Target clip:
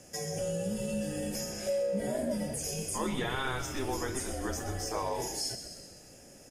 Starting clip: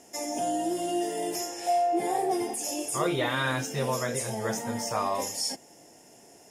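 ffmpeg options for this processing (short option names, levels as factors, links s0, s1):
-filter_complex "[0:a]asplit=6[s0][s1][s2][s3][s4][s5];[s1]adelay=128,afreqshift=-64,volume=0.282[s6];[s2]adelay=256,afreqshift=-128,volume=0.145[s7];[s3]adelay=384,afreqshift=-192,volume=0.0733[s8];[s4]adelay=512,afreqshift=-256,volume=0.0376[s9];[s5]adelay=640,afreqshift=-320,volume=0.0191[s10];[s0][s6][s7][s8][s9][s10]amix=inputs=6:normalize=0,afreqshift=-140,acompressor=threshold=0.0112:ratio=1.5"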